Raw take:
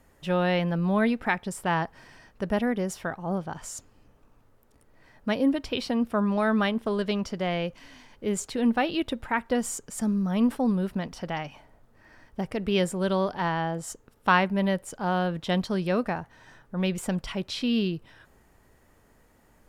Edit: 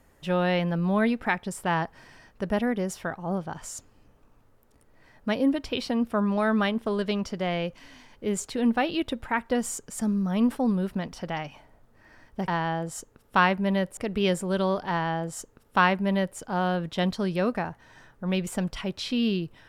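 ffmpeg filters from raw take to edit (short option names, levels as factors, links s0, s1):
-filter_complex "[0:a]asplit=3[s0][s1][s2];[s0]atrim=end=12.482[s3];[s1]atrim=start=13.398:end=14.892[s4];[s2]atrim=start=12.478[s5];[s3][s4]acrossfade=d=0.004:c1=hsin:c2=hsin[s6];[s6][s5]acrossfade=d=0.004:c1=hsin:c2=hsin"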